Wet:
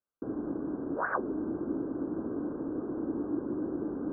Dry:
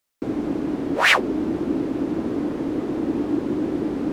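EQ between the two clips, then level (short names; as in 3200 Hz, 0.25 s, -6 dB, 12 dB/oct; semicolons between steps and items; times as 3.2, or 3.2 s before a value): rippled Chebyshev low-pass 1600 Hz, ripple 3 dB; -9.0 dB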